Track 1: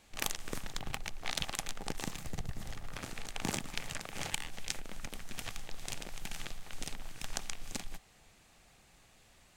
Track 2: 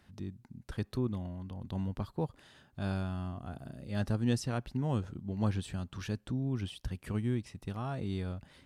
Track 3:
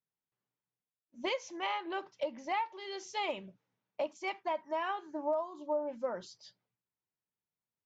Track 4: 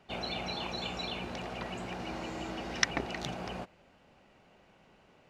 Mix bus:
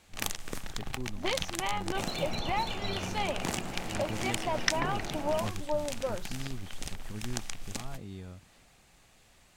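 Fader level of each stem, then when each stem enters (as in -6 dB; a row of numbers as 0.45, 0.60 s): +1.5, -7.5, +1.5, -0.5 dB; 0.00, 0.00, 0.00, 1.85 s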